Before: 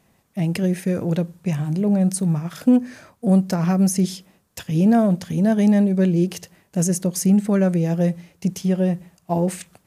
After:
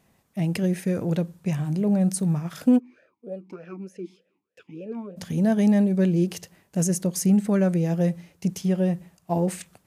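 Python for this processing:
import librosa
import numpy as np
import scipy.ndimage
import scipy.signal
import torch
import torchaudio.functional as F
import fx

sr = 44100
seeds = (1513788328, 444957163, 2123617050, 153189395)

y = fx.vowel_sweep(x, sr, vowels='e-u', hz=3.3, at=(2.78, 5.16), fade=0.02)
y = y * librosa.db_to_amplitude(-3.0)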